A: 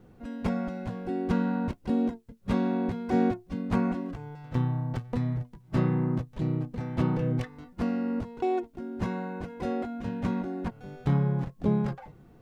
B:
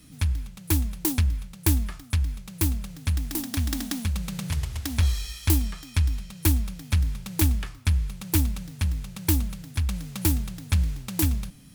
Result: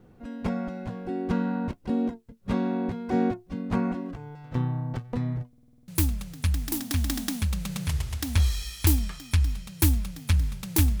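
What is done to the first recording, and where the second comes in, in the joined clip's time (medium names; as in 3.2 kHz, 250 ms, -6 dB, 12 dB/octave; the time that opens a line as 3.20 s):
A
5.48 s: stutter in place 0.05 s, 8 plays
5.88 s: go over to B from 2.51 s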